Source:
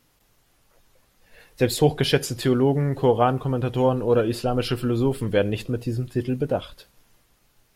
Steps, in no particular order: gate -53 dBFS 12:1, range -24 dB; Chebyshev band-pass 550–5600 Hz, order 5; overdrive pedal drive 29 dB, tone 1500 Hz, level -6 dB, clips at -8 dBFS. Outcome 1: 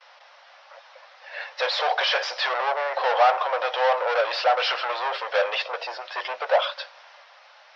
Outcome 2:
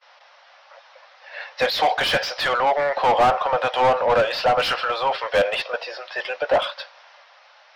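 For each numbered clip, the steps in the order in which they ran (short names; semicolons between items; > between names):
overdrive pedal > gate > Chebyshev band-pass; Chebyshev band-pass > overdrive pedal > gate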